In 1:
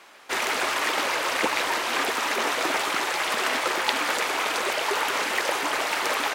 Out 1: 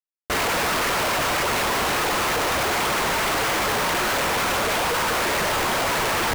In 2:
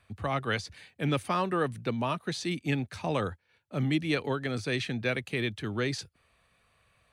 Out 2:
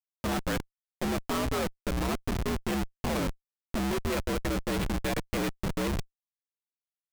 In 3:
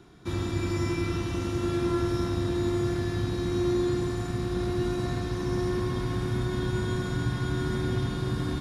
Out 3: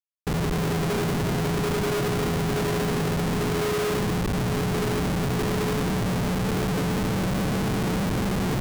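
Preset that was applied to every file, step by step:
frequency shift +66 Hz; Schmitt trigger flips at -29 dBFS; gain +3.5 dB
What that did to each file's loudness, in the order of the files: +3.0, -0.5, +3.5 LU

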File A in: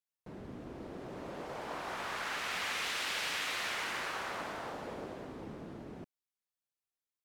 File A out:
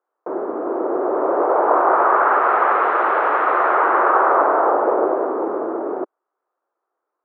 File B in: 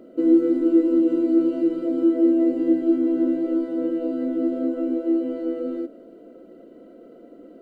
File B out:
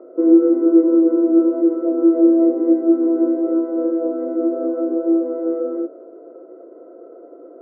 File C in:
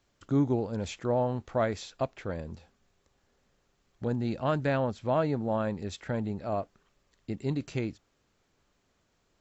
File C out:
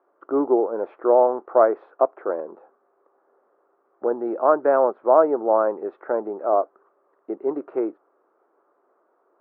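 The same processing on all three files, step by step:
elliptic band-pass 350–1300 Hz, stop band 70 dB; normalise peaks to -3 dBFS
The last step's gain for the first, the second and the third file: +27.0, +8.0, +13.0 dB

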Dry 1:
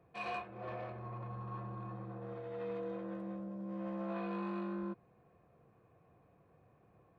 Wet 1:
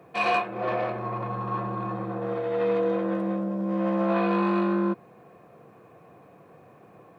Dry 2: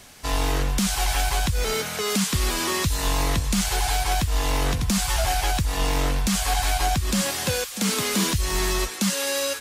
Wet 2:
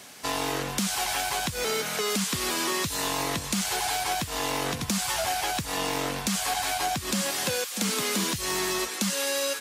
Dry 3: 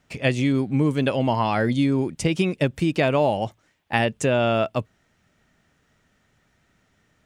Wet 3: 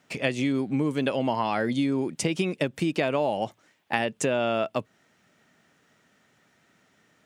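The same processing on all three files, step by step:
HPF 180 Hz 12 dB/oct; compressor 2.5:1, threshold -27 dBFS; match loudness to -27 LUFS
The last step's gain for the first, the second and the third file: +16.5, +1.0, +2.5 dB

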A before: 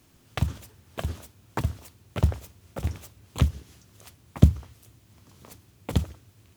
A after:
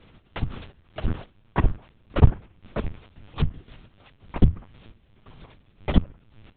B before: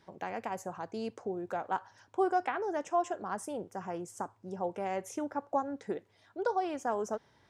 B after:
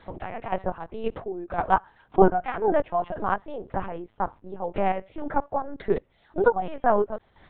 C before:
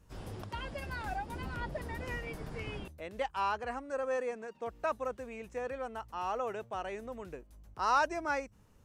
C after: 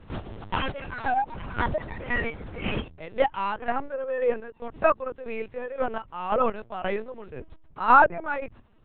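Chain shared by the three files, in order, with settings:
chopper 1.9 Hz, depth 65%, duty 35%; treble ducked by the level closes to 2100 Hz, closed at -28 dBFS; LPC vocoder at 8 kHz pitch kept; match loudness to -27 LUFS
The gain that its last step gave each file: +8.5, +12.5, +13.0 dB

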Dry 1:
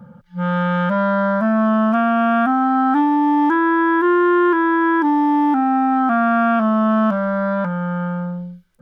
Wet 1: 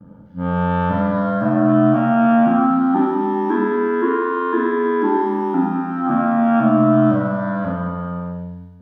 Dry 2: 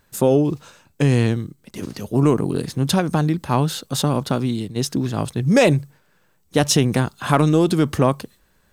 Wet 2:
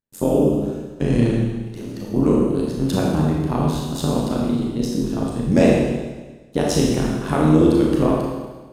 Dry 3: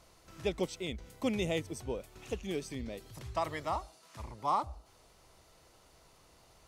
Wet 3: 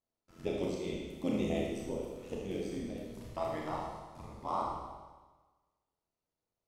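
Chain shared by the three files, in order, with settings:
gate -55 dBFS, range -27 dB; bell 270 Hz +8 dB 2.6 oct; AM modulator 88 Hz, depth 80%; Schroeder reverb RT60 1.3 s, combs from 26 ms, DRR -3 dB; gain -6.5 dB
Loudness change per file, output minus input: -1.0, 0.0, -1.0 LU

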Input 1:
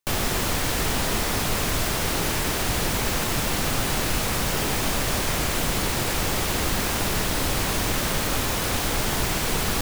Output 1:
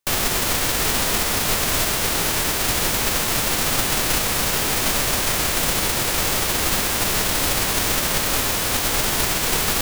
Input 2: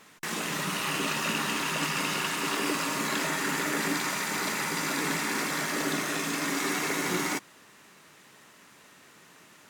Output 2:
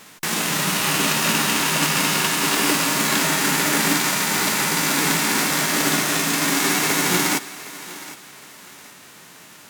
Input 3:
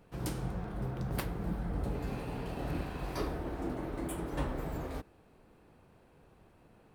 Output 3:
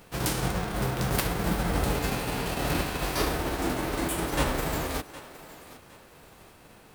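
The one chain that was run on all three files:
spectral whitening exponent 0.6; thinning echo 0.763 s, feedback 32%, high-pass 290 Hz, level -16 dB; normalise peaks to -6 dBFS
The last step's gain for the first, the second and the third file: +2.5, +9.5, +8.0 dB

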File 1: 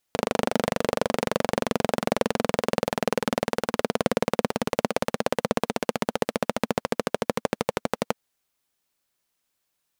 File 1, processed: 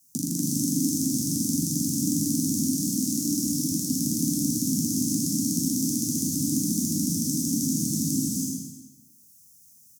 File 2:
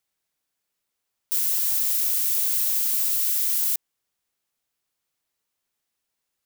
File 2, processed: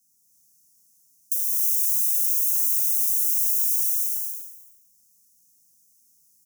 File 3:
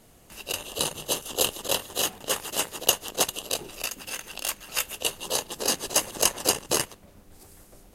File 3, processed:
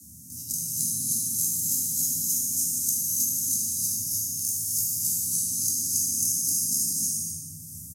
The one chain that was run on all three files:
spectral trails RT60 0.87 s; Chebyshev band-stop 190–5700 Hz, order 4; de-hum 58.83 Hz, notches 37; dynamic EQ 3000 Hz, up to -4 dB, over -55 dBFS, Q 3.3; compressor, threshold -26 dBFS; frequency shift +72 Hz; on a send: echo 76 ms -10 dB; on the sum: non-linear reverb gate 0.35 s rising, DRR -3 dB; three-band squash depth 40%; normalise peaks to -9 dBFS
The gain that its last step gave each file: +5.5, +2.0, 0.0 dB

